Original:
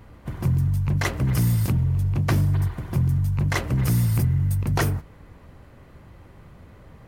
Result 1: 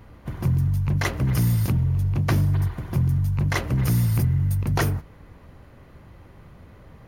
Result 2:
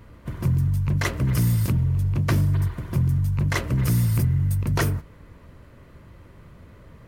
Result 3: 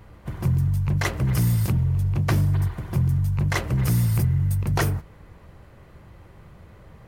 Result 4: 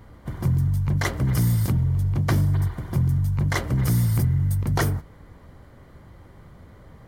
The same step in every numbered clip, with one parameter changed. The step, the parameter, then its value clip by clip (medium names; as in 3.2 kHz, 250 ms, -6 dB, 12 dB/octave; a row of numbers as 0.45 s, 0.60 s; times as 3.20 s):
band-stop, frequency: 7.9 kHz, 780 Hz, 260 Hz, 2.6 kHz